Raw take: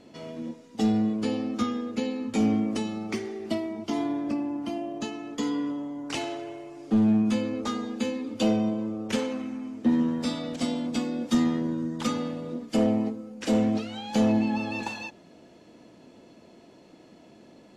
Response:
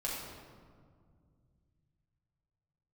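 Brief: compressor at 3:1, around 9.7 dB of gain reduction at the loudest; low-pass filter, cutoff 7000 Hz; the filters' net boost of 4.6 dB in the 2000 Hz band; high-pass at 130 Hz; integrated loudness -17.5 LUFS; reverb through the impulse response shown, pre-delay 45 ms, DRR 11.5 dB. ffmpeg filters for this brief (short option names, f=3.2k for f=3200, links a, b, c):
-filter_complex "[0:a]highpass=130,lowpass=7k,equalizer=f=2k:t=o:g=6,acompressor=threshold=-32dB:ratio=3,asplit=2[a][b];[1:a]atrim=start_sample=2205,adelay=45[c];[b][c]afir=irnorm=-1:irlink=0,volume=-15dB[d];[a][d]amix=inputs=2:normalize=0,volume=16.5dB"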